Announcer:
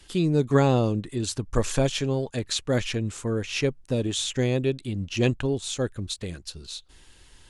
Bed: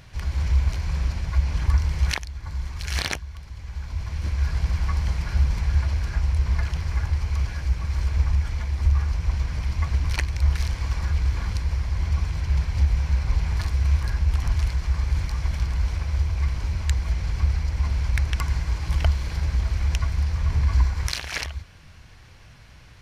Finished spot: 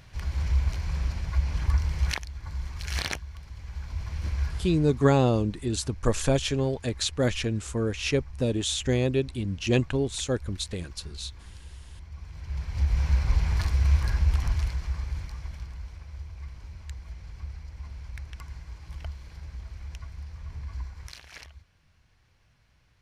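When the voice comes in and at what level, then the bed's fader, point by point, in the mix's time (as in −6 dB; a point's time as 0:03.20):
4.50 s, −0.5 dB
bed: 0:04.39 −4 dB
0:05.09 −20 dB
0:12.10 −20 dB
0:13.03 −1 dB
0:14.25 −1 dB
0:15.91 −16.5 dB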